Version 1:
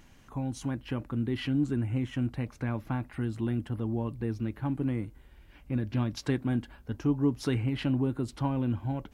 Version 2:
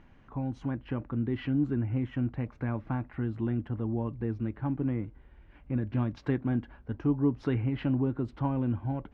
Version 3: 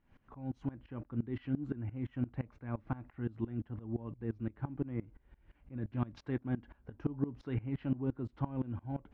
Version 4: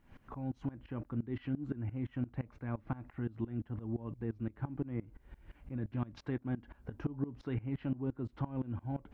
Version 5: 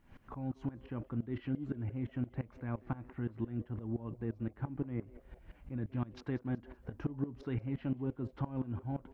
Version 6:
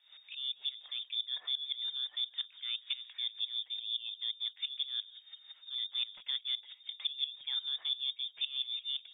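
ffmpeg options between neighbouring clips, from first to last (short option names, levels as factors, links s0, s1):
-af "lowpass=2000"
-af "aeval=exprs='val(0)*pow(10,-21*if(lt(mod(-5.8*n/s,1),2*abs(-5.8)/1000),1-mod(-5.8*n/s,1)/(2*abs(-5.8)/1000),(mod(-5.8*n/s,1)-2*abs(-5.8)/1000)/(1-2*abs(-5.8)/1000))/20)':c=same,volume=0.891"
-af "acompressor=threshold=0.00447:ratio=2,volume=2.37"
-filter_complex "[0:a]asplit=4[s0][s1][s2][s3];[s1]adelay=188,afreqshift=130,volume=0.0891[s4];[s2]adelay=376,afreqshift=260,volume=0.0376[s5];[s3]adelay=564,afreqshift=390,volume=0.0157[s6];[s0][s4][s5][s6]amix=inputs=4:normalize=0"
-af "lowpass=f=3100:t=q:w=0.5098,lowpass=f=3100:t=q:w=0.6013,lowpass=f=3100:t=q:w=0.9,lowpass=f=3100:t=q:w=2.563,afreqshift=-3700"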